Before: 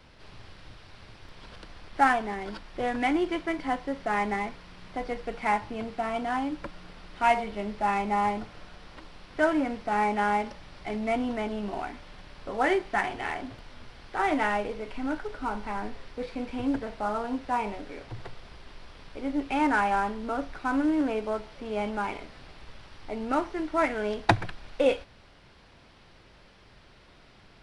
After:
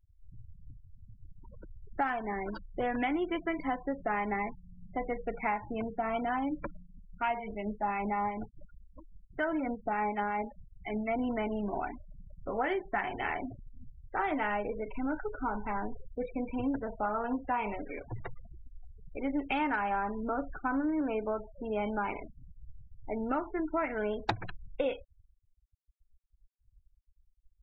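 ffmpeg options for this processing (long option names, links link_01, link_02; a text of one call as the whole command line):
ffmpeg -i in.wav -filter_complex "[0:a]asettb=1/sr,asplit=3[link_01][link_02][link_03];[link_01]atrim=end=6.794[link_04];[link_02]atrim=start=6.79:end=11.19,asetpts=PTS-STARTPTS,afade=type=in:duration=0.004:curve=qsin,afade=type=out:start_time=4.396:duration=0.004:curve=qsin,acrossover=split=1100[link_05][link_06];[link_05]aeval=exprs='val(0)*(1-0.5/2+0.5/2*cos(2*PI*5.5*n/s))':channel_layout=same[link_07];[link_06]aeval=exprs='val(0)*(1-0.5/2-0.5/2*cos(2*PI*5.5*n/s))':channel_layout=same[link_08];[link_07][link_08]amix=inputs=2:normalize=0[link_09];[link_03]atrim=start=11.186[link_10];[link_04][link_09]acrossfade=duration=0.004:curve1=hsin:curve2=qsin[link_11];[link_11][link_10]acrossfade=duration=0.004:curve1=qsin:curve2=hsin,asettb=1/sr,asplit=3[link_12][link_13][link_14];[link_12]atrim=end=17.034[link_15];[link_13]atrim=start=17.03:end=19.76,asetpts=PTS-STARTPTS,afade=type=in:duration=0.004:curve=qsin,afade=type=out:start_time=2.726:duration=0.004:curve=qsin,equalizer=frequency=3000:width=0.43:gain=5[link_16];[link_14]atrim=start=19.756[link_17];[link_15][link_16]acrossfade=duration=0.004:curve1=hsin:curve2=qsin[link_18];[link_18][link_17]acrossfade=duration=0.004:curve1=qsin:curve2=hsin,afftfilt=real='re*gte(hypot(re,im),0.0158)':imag='im*gte(hypot(re,im),0.0158)':win_size=1024:overlap=0.75,acompressor=threshold=-28dB:ratio=6" out.wav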